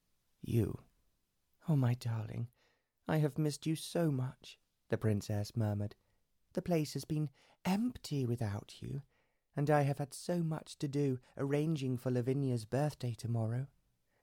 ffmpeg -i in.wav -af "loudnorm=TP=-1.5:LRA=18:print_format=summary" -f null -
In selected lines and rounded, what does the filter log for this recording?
Input Integrated:    -36.8 LUFS
Input True Peak:     -19.0 dBTP
Input LRA:             2.2 LU
Input Threshold:     -47.2 LUFS